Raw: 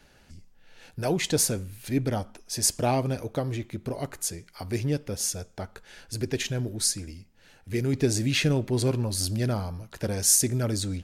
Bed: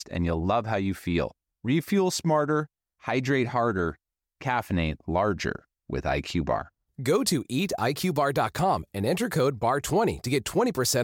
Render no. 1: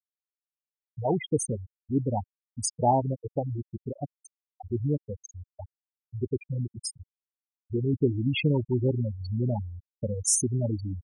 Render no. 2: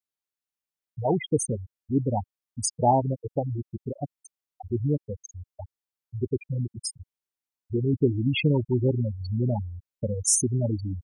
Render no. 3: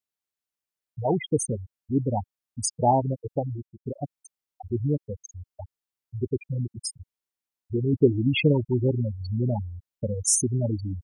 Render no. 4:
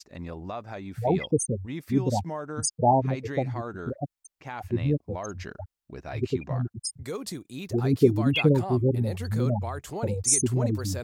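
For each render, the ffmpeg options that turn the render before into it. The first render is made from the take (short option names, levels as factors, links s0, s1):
-af "equalizer=f=860:t=o:w=0.39:g=8,afftfilt=real='re*gte(hypot(re,im),0.178)':imag='im*gte(hypot(re,im),0.178)':win_size=1024:overlap=0.75"
-af "volume=1.26"
-filter_complex "[0:a]asplit=3[s0][s1][s2];[s0]afade=t=out:st=7.91:d=0.02[s3];[s1]equalizer=f=790:t=o:w=1.8:g=10.5,afade=t=in:st=7.91:d=0.02,afade=t=out:st=8.52:d=0.02[s4];[s2]afade=t=in:st=8.52:d=0.02[s5];[s3][s4][s5]amix=inputs=3:normalize=0,asplit=2[s6][s7];[s6]atrim=end=3.85,asetpts=PTS-STARTPTS,afade=t=out:st=3.44:d=0.41[s8];[s7]atrim=start=3.85,asetpts=PTS-STARTPTS,afade=t=in:d=0.004:c=hsin[s9];[s8][s9]concat=n=2:v=0:a=1"
-filter_complex "[1:a]volume=0.282[s0];[0:a][s0]amix=inputs=2:normalize=0"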